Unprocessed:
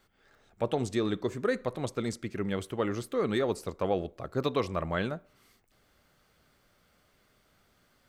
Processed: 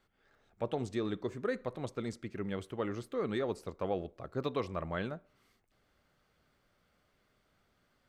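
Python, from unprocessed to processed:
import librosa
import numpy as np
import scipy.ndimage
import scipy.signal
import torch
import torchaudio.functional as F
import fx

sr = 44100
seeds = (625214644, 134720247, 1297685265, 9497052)

y = fx.high_shelf(x, sr, hz=6000.0, db=-8.5)
y = y * 10.0 ** (-5.5 / 20.0)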